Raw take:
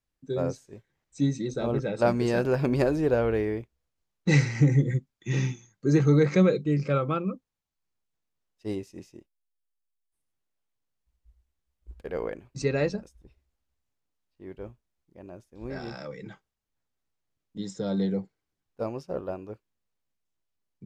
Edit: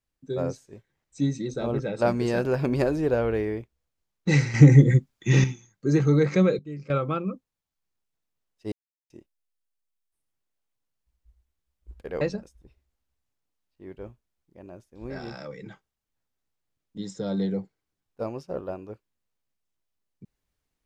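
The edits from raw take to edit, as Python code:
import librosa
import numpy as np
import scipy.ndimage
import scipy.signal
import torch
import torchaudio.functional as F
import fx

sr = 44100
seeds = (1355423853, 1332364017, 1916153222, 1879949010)

y = fx.edit(x, sr, fx.clip_gain(start_s=4.54, length_s=0.9, db=8.0),
    fx.clip_gain(start_s=6.59, length_s=0.31, db=-11.5),
    fx.silence(start_s=8.72, length_s=0.38),
    fx.cut(start_s=12.21, length_s=0.6), tone=tone)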